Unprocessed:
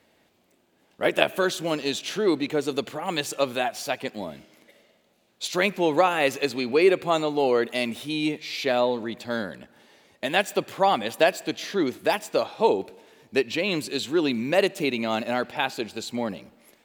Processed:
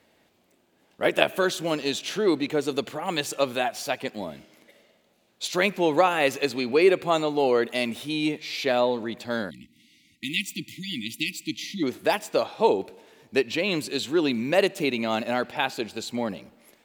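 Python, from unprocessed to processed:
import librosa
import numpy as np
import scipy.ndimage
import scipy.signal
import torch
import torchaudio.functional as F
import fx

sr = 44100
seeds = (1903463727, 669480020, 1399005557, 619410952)

y = fx.brickwall_bandstop(x, sr, low_hz=340.0, high_hz=1900.0, at=(9.49, 11.82), fade=0.02)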